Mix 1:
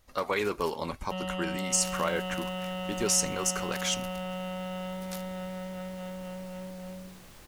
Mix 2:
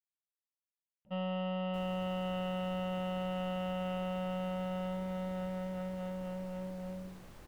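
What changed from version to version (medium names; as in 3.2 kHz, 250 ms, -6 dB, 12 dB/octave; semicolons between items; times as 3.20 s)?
speech: muted; master: add treble shelf 2 kHz -10 dB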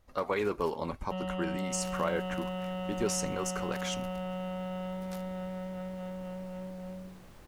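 speech: unmuted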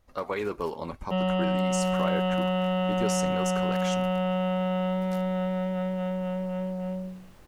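first sound +10.0 dB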